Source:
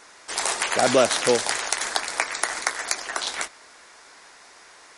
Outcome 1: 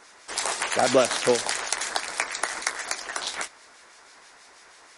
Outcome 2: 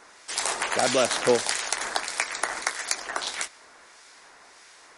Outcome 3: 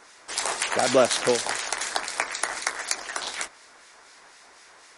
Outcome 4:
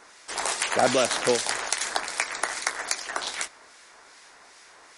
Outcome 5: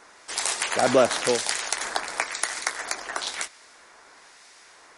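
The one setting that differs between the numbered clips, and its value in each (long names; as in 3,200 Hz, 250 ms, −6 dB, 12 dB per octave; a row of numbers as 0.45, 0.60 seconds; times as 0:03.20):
two-band tremolo in antiphase, speed: 6.2, 1.6, 4, 2.5, 1 Hertz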